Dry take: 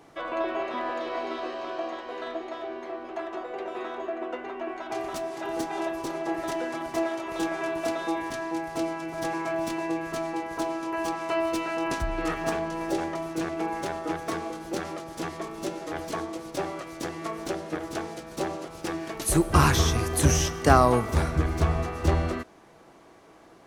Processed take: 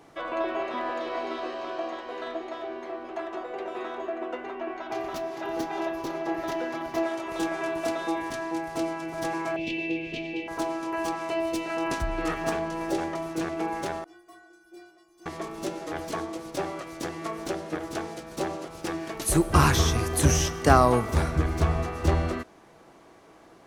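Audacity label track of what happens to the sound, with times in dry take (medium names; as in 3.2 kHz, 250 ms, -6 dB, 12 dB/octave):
4.550000	7.040000	peaking EQ 8.6 kHz -12 dB 0.51 oct
9.560000	10.480000	FFT filter 490 Hz 0 dB, 1.3 kHz -27 dB, 2.6 kHz +13 dB, 9.6 kHz -22 dB
11.290000	11.700000	peaking EQ 1.3 kHz -9 dB 0.89 oct
14.040000	15.260000	inharmonic resonator 350 Hz, decay 0.61 s, inharmonicity 0.008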